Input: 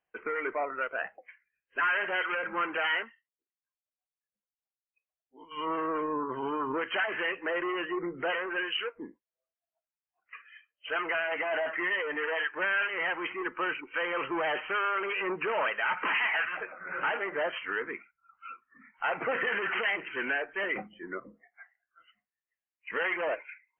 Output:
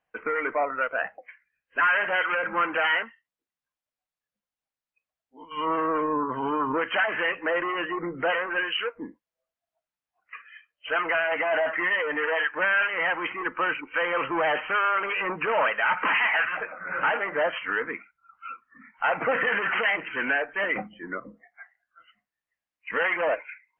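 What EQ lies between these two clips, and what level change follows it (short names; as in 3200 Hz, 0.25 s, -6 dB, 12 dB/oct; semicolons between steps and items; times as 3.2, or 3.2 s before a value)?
LPF 2600 Hz 6 dB/oct; bell 380 Hz -11 dB 0.22 oct; +7.0 dB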